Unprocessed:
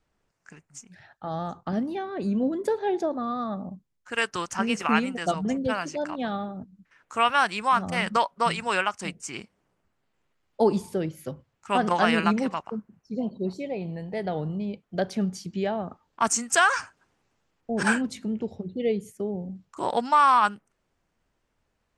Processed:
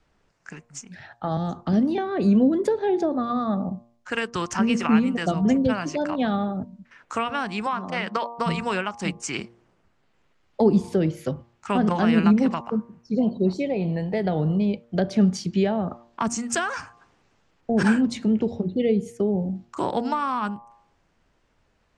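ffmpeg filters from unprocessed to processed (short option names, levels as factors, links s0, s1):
-filter_complex "[0:a]asettb=1/sr,asplit=3[s0][s1][s2];[s0]atrim=end=1.374[s3];[s1]atrim=start=1.37:end=1.98,asetpts=PTS-STARTPTS,afade=t=in:d=0.004:c=qsin,afade=t=out:st=0.606:d=0.004:c=qsin,acrossover=split=470|3000[s4][s5][s6];[s5]acompressor=threshold=0.00562:ratio=2.5:attack=3.2:release=140:knee=2.83:detection=peak[s7];[s4][s7][s6]amix=inputs=3:normalize=0[s8];[s2]atrim=start=1.976[s9];[s3][s8]acrossfade=d=0.004:c1=hsin:c2=qsin[s10];[s10][s9]acrossfade=d=0.004:c1=qsin:c2=hsin,asettb=1/sr,asplit=3[s11][s12][s13];[s11]atrim=end=7.664[s14];[s12]atrim=start=7.66:end=8.39,asetpts=PTS-STARTPTS,afade=t=in:d=0.004:c=qsin,afade=t=out:st=0.726:d=0.004:c=qsin,highpass=330,lowpass=5600[s15];[s13]atrim=start=8.386[s16];[s14][s15]acrossfade=d=0.004:c1=hsin:c2=qsin[s17];[s17][s16]acrossfade=d=0.004:c1=qsin:c2=hsin,lowpass=6700,bandreject=f=117.5:t=h:w=4,bandreject=f=235:t=h:w=4,bandreject=f=352.5:t=h:w=4,bandreject=f=470:t=h:w=4,bandreject=f=587.5:t=h:w=4,bandreject=f=705:t=h:w=4,bandreject=f=822.5:t=h:w=4,bandreject=f=940:t=h:w=4,bandreject=f=1057.5:t=h:w=4,bandreject=f=1175:t=h:w=4,acrossover=split=350[s18][s19];[s19]acompressor=threshold=0.02:ratio=6[s20];[s18][s20]amix=inputs=2:normalize=0,volume=2.66"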